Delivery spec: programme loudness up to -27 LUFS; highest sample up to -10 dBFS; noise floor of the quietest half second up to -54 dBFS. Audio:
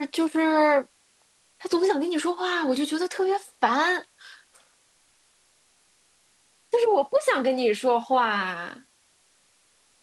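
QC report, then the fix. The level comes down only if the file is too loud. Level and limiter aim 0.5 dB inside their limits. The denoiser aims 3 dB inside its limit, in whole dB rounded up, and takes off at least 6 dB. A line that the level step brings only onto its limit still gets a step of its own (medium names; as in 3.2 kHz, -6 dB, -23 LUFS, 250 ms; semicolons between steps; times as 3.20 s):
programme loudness -24.0 LUFS: fail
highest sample -8.5 dBFS: fail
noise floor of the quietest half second -64 dBFS: pass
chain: trim -3.5 dB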